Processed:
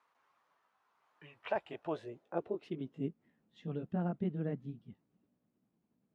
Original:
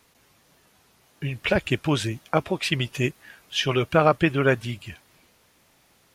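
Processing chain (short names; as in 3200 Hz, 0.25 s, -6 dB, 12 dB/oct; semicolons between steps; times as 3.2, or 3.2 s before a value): gliding pitch shift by +3.5 st starting unshifted; band-pass sweep 1100 Hz -> 210 Hz, 1.27–3.17; gain -5 dB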